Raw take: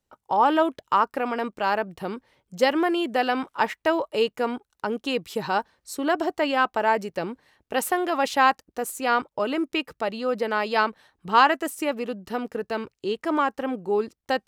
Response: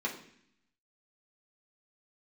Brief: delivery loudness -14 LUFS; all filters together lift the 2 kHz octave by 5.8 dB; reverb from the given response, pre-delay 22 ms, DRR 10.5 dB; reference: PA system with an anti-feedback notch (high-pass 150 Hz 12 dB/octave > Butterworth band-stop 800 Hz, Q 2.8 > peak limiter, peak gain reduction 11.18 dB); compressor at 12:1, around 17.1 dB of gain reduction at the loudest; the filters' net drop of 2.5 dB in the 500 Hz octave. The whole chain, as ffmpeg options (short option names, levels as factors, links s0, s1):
-filter_complex "[0:a]equalizer=f=500:t=o:g=-3,equalizer=f=2000:t=o:g=8,acompressor=threshold=0.0447:ratio=12,asplit=2[s0][s1];[1:a]atrim=start_sample=2205,adelay=22[s2];[s1][s2]afir=irnorm=-1:irlink=0,volume=0.168[s3];[s0][s3]amix=inputs=2:normalize=0,highpass=150,asuperstop=centerf=800:order=8:qfactor=2.8,volume=13.3,alimiter=limit=0.631:level=0:latency=1"